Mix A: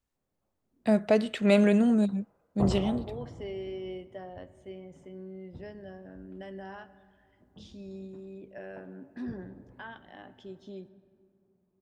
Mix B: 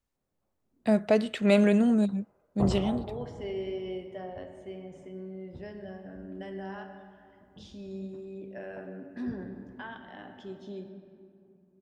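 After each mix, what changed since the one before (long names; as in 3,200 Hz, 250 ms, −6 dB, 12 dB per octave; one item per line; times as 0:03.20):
second voice: send +11.0 dB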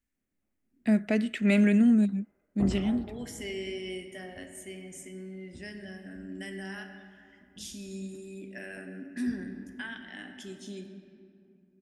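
second voice: remove head-to-tape spacing loss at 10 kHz 33 dB
master: add octave-band graphic EQ 125/250/500/1,000/2,000/4,000 Hz −9/+7/−8/−11/+7/−7 dB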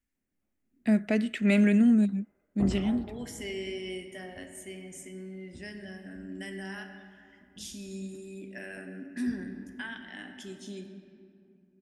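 second voice: add parametric band 950 Hz +3 dB 0.32 octaves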